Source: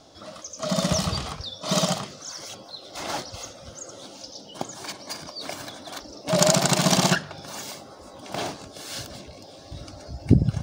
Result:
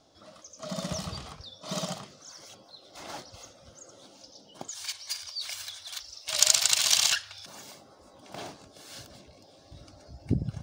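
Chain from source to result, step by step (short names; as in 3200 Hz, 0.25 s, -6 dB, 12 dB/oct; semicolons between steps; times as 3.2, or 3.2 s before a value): 4.68–7.46 EQ curve 100 Hz 0 dB, 160 Hz -29 dB, 2900 Hz +12 dB; gain -10.5 dB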